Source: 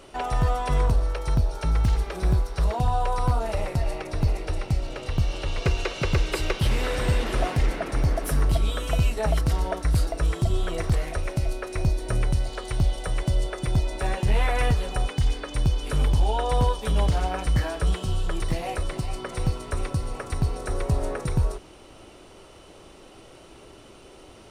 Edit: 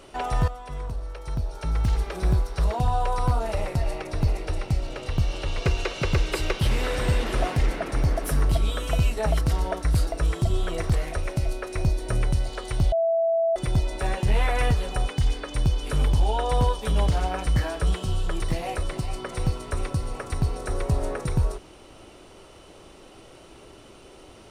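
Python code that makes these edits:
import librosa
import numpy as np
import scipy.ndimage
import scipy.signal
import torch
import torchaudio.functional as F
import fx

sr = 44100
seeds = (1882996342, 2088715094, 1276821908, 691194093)

y = fx.edit(x, sr, fx.fade_in_from(start_s=0.48, length_s=1.55, curve='qua', floor_db=-12.5),
    fx.bleep(start_s=12.92, length_s=0.64, hz=662.0, db=-19.0), tone=tone)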